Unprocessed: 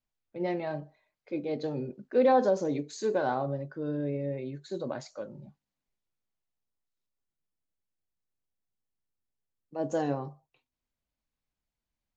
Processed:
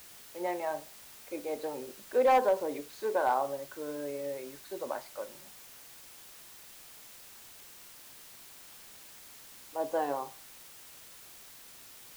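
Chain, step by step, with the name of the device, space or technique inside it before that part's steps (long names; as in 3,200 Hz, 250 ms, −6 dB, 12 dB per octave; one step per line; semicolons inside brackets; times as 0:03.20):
drive-through speaker (band-pass filter 470–2,900 Hz; parametric band 940 Hz +7 dB 0.56 octaves; hard clipping −18.5 dBFS, distortion −16 dB; white noise bed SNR 16 dB)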